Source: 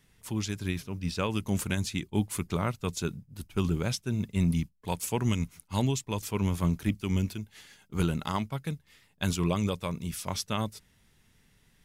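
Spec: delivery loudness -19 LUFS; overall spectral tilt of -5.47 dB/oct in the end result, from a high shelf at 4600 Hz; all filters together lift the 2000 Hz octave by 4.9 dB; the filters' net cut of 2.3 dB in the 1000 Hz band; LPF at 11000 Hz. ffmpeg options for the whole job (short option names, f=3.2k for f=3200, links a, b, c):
-af "lowpass=11k,equalizer=f=1k:t=o:g=-5,equalizer=f=2k:t=o:g=8.5,highshelf=f=4.6k:g=-3,volume=12dB"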